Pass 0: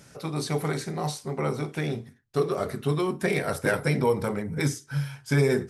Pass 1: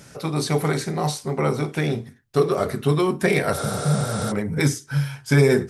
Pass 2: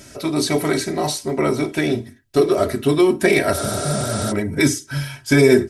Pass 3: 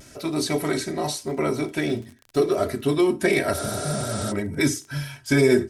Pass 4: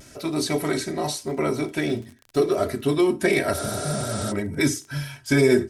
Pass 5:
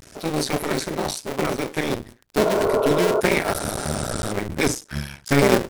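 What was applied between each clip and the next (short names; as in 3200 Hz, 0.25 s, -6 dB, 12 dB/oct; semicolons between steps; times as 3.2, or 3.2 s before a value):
spectral repair 3.59–4.29, 220–9900 Hz before; gain +6 dB
bell 1100 Hz -5.5 dB 1 oct; comb 3.1 ms, depth 67%; gain +4 dB
crackle 36/s -30 dBFS; vibrato 0.86 Hz 25 cents; gain -5 dB
nothing audible
cycle switcher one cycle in 2, muted; spectral repair 2.48–3.18, 360–1500 Hz before; gain +3.5 dB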